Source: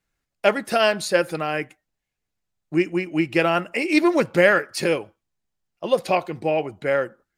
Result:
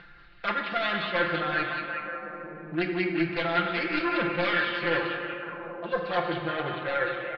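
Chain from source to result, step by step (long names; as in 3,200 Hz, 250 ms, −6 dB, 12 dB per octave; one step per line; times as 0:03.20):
phase distortion by the signal itself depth 0.4 ms
Butterworth low-pass 4,400 Hz 48 dB per octave
parametric band 1,500 Hz +10.5 dB 0.8 octaves
reversed playback
downward compressor, threshold −23 dBFS, peak gain reduction 13.5 dB
reversed playback
comb filter 5.8 ms, depth 88%
echo through a band-pass that steps 185 ms, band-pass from 3,400 Hz, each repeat −0.7 octaves, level −1.5 dB
on a send at −2 dB: convolution reverb RT60 1.9 s, pre-delay 6 ms
on the sum: upward compression, threshold −24 dBFS
level −6.5 dB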